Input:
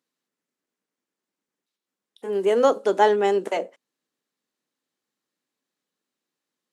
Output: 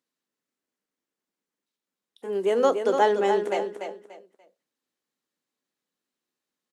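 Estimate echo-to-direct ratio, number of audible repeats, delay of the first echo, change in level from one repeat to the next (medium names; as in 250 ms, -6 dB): -6.5 dB, 3, 291 ms, -11.5 dB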